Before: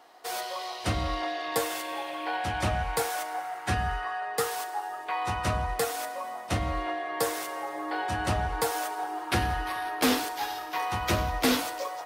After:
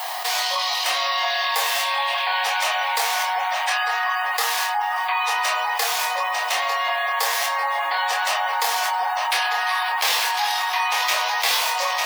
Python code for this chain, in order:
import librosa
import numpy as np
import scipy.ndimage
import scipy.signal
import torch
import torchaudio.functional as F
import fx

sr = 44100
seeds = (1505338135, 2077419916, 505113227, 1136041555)

y = scipy.ndimage.median_filter(x, 5, mode='constant')
y = scipy.signal.sosfilt(scipy.signal.butter(4, 770.0, 'highpass', fs=sr, output='sos'), y)
y = fx.high_shelf(y, sr, hz=4800.0, db=7.0)
y = fx.echo_feedback(y, sr, ms=899, feedback_pct=45, wet_db=-10)
y = fx.spec_gate(y, sr, threshold_db=-30, keep='strong')
y = fx.peak_eq(y, sr, hz=1400.0, db=-11.0, octaves=0.24)
y = fx.doubler(y, sr, ms=25.0, db=-3.5)
y = fx.dmg_noise_colour(y, sr, seeds[0], colour='violet', level_db=-63.0)
y = fx.env_flatten(y, sr, amount_pct=70)
y = y * 10.0 ** (5.0 / 20.0)